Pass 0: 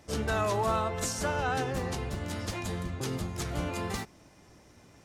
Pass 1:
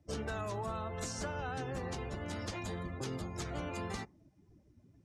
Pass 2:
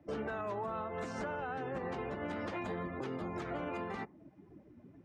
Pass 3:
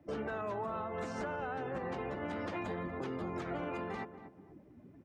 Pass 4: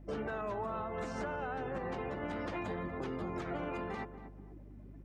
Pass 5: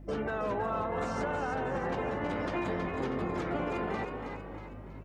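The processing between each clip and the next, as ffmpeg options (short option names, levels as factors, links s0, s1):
-filter_complex "[0:a]afftdn=nr=22:nf=-48,acrossover=split=250|7900[s0][s1][s2];[s0]acompressor=threshold=0.0112:ratio=4[s3];[s1]acompressor=threshold=0.0141:ratio=4[s4];[s2]acompressor=threshold=0.00126:ratio=4[s5];[s3][s4][s5]amix=inputs=3:normalize=0,volume=0.794"
-filter_complex "[0:a]acrossover=split=170 2700:gain=0.178 1 0.0794[s0][s1][s2];[s0][s1][s2]amix=inputs=3:normalize=0,alimiter=level_in=7.08:limit=0.0631:level=0:latency=1:release=338,volume=0.141,volume=3.55"
-filter_complex "[0:a]asplit=2[s0][s1];[s1]adelay=236,lowpass=f=1300:p=1,volume=0.282,asplit=2[s2][s3];[s3]adelay=236,lowpass=f=1300:p=1,volume=0.32,asplit=2[s4][s5];[s5]adelay=236,lowpass=f=1300:p=1,volume=0.32[s6];[s0][s2][s4][s6]amix=inputs=4:normalize=0"
-af "aeval=exprs='val(0)+0.00282*(sin(2*PI*50*n/s)+sin(2*PI*2*50*n/s)/2+sin(2*PI*3*50*n/s)/3+sin(2*PI*4*50*n/s)/4+sin(2*PI*5*50*n/s)/5)':c=same"
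-filter_complex "[0:a]asplit=6[s0][s1][s2][s3][s4][s5];[s1]adelay=320,afreqshift=55,volume=0.473[s6];[s2]adelay=640,afreqshift=110,volume=0.214[s7];[s3]adelay=960,afreqshift=165,volume=0.0955[s8];[s4]adelay=1280,afreqshift=220,volume=0.0432[s9];[s5]adelay=1600,afreqshift=275,volume=0.0195[s10];[s0][s6][s7][s8][s9][s10]amix=inputs=6:normalize=0,volume=1.68"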